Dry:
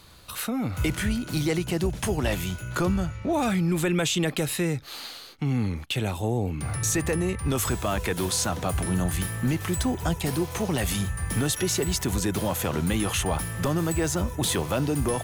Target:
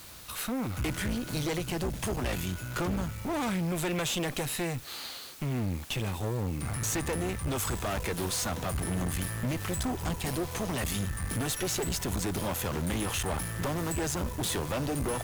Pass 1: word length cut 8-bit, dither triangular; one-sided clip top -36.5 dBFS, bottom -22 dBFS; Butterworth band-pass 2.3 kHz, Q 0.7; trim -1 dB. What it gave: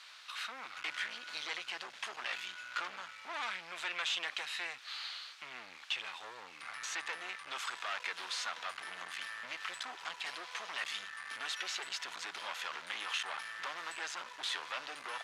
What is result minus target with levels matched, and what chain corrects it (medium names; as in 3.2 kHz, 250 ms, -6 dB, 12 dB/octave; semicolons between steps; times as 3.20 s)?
2 kHz band +7.5 dB
word length cut 8-bit, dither triangular; one-sided clip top -36.5 dBFS, bottom -22 dBFS; trim -1 dB